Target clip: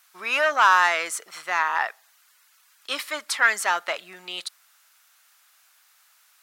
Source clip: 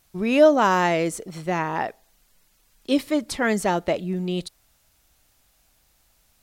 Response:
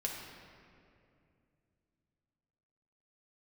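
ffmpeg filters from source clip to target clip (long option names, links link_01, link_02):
-af "asoftclip=type=tanh:threshold=-12.5dB,highpass=frequency=1300:width_type=q:width=2,volume=4dB"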